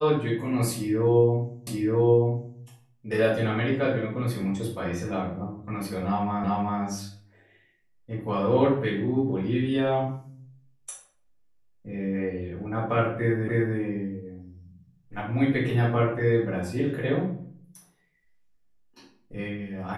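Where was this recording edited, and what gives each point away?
0:01.67: the same again, the last 0.93 s
0:06.44: the same again, the last 0.38 s
0:13.48: the same again, the last 0.3 s

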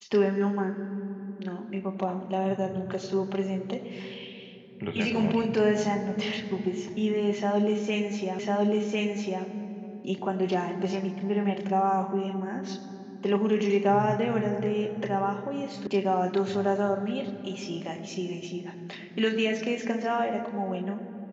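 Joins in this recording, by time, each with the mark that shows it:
0:08.39: the same again, the last 1.05 s
0:15.87: cut off before it has died away

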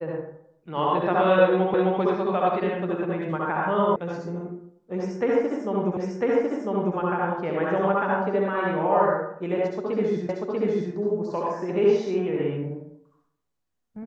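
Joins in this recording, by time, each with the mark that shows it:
0:01.74: the same again, the last 0.26 s
0:03.96: cut off before it has died away
0:05.97: the same again, the last 1 s
0:10.29: the same again, the last 0.64 s

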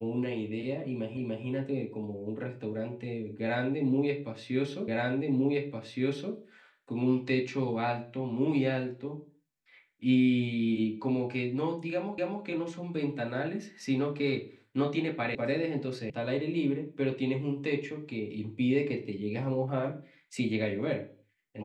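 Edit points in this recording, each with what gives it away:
0:01.17: the same again, the last 0.29 s
0:04.88: the same again, the last 1.47 s
0:12.18: the same again, the last 0.26 s
0:15.35: cut off before it has died away
0:16.10: cut off before it has died away

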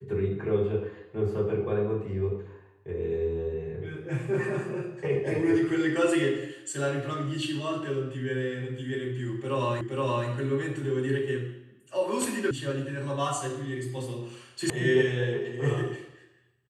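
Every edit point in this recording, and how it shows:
0:09.81: the same again, the last 0.47 s
0:12.51: cut off before it has died away
0:14.70: cut off before it has died away

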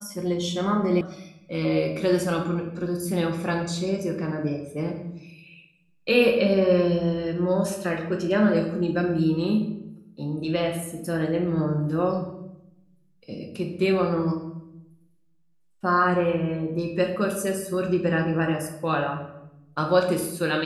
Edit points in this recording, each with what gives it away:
0:01.01: cut off before it has died away

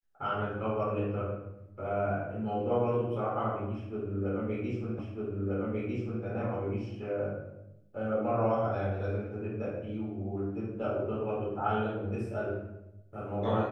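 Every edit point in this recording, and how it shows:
0:04.99: the same again, the last 1.25 s

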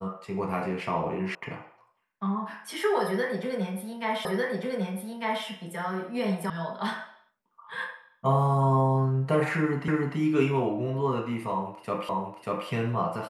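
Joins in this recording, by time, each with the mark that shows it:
0:01.35: cut off before it has died away
0:04.25: the same again, the last 1.2 s
0:06.50: cut off before it has died away
0:09.88: the same again, the last 0.3 s
0:12.09: the same again, the last 0.59 s

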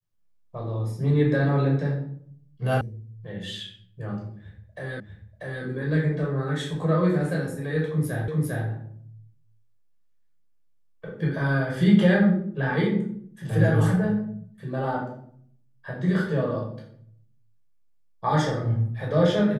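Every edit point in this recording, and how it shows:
0:02.81: cut off before it has died away
0:05.00: the same again, the last 0.64 s
0:08.28: the same again, the last 0.4 s

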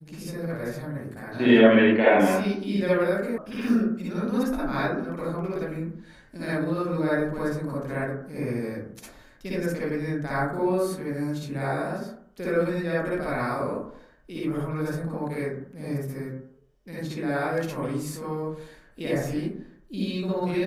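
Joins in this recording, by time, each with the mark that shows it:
0:03.38: cut off before it has died away

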